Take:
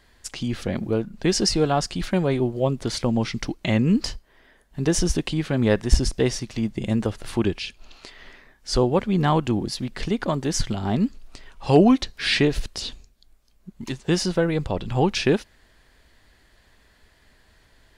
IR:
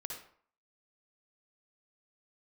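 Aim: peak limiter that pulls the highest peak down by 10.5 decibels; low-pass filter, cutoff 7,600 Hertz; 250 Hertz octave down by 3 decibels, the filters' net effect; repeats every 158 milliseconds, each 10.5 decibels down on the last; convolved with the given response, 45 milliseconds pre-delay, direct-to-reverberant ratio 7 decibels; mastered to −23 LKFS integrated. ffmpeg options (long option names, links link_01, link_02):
-filter_complex "[0:a]lowpass=7600,equalizer=frequency=250:width_type=o:gain=-4,alimiter=limit=-16dB:level=0:latency=1,aecho=1:1:158|316|474:0.299|0.0896|0.0269,asplit=2[link_01][link_02];[1:a]atrim=start_sample=2205,adelay=45[link_03];[link_02][link_03]afir=irnorm=-1:irlink=0,volume=-5.5dB[link_04];[link_01][link_04]amix=inputs=2:normalize=0,volume=3.5dB"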